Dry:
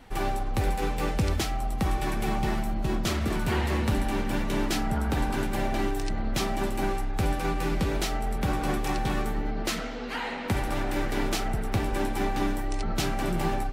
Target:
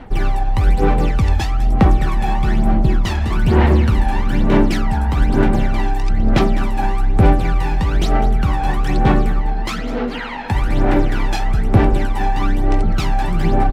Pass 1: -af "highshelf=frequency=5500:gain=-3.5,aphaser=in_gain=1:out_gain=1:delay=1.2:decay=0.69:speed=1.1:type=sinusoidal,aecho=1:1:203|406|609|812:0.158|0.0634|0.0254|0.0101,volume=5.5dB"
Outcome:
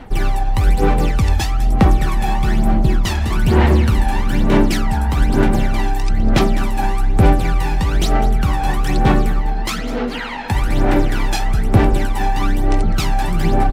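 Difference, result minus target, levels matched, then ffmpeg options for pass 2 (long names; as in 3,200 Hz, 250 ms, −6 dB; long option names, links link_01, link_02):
8,000 Hz band +6.5 dB
-af "highshelf=frequency=5500:gain=-14,aphaser=in_gain=1:out_gain=1:delay=1.2:decay=0.69:speed=1.1:type=sinusoidal,aecho=1:1:203|406|609|812:0.158|0.0634|0.0254|0.0101,volume=5.5dB"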